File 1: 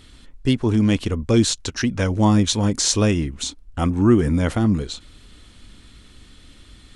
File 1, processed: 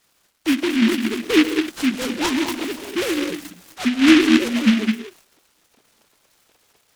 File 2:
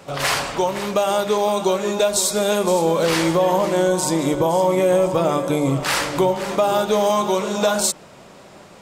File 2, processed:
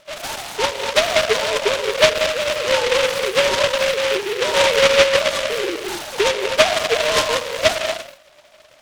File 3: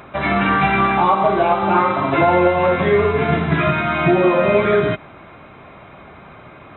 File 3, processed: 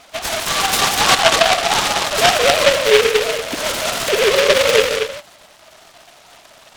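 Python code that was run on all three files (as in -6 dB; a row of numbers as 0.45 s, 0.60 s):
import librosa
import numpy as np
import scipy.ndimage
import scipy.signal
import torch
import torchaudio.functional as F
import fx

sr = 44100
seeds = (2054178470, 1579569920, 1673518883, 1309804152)

y = fx.sine_speech(x, sr)
y = fx.rev_gated(y, sr, seeds[0], gate_ms=270, shape='rising', drr_db=4.5)
y = fx.noise_mod_delay(y, sr, seeds[1], noise_hz=2200.0, depth_ms=0.18)
y = F.gain(torch.from_numpy(y), -1.0).numpy()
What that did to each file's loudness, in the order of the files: +0.5 LU, +1.5 LU, +1.5 LU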